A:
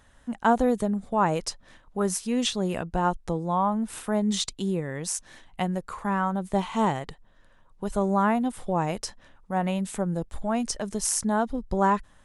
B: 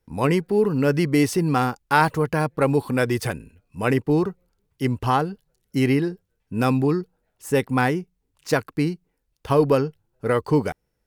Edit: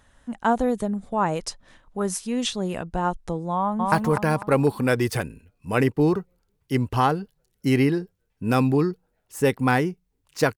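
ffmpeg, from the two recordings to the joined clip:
ffmpeg -i cue0.wav -i cue1.wav -filter_complex "[0:a]apad=whole_dur=10.57,atrim=end=10.57,atrim=end=3.922[link_01];[1:a]atrim=start=2.018:end=8.67[link_02];[link_01][link_02]acrossfade=duration=0.004:curve1=hsin:curve2=hsin,asplit=2[link_03][link_04];[link_04]afade=type=in:start_time=3.54:duration=0.01,afade=type=out:start_time=3.92:duration=0.01,aecho=0:1:250|500|750|1000|1250:0.841395|0.336558|0.134623|0.0538493|0.0215397[link_05];[link_03][link_05]amix=inputs=2:normalize=0" out.wav

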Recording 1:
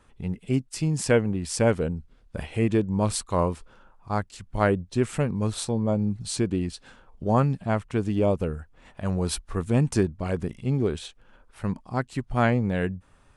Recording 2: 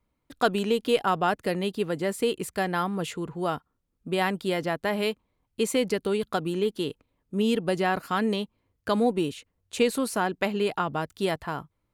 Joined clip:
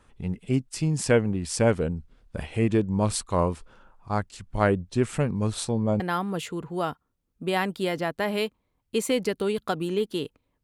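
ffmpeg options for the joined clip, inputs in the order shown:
ffmpeg -i cue0.wav -i cue1.wav -filter_complex "[0:a]apad=whole_dur=10.63,atrim=end=10.63,atrim=end=6.002[link_01];[1:a]atrim=start=2.648:end=7.28[link_02];[link_01][link_02]acrossfade=duration=0.004:curve1=hsin:curve2=hsin" out.wav

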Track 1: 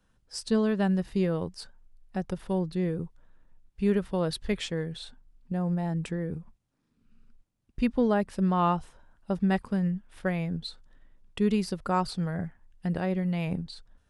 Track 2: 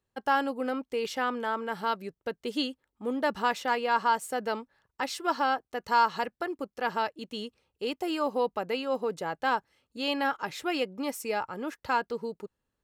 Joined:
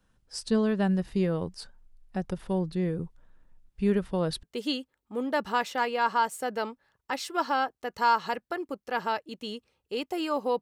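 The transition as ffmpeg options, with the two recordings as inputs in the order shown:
ffmpeg -i cue0.wav -i cue1.wav -filter_complex "[0:a]apad=whole_dur=10.61,atrim=end=10.61,atrim=end=4.432[link_01];[1:a]atrim=start=2.328:end=8.51[link_02];[link_01][link_02]acrossfade=duration=0.004:curve1=hsin:curve2=hsin" out.wav

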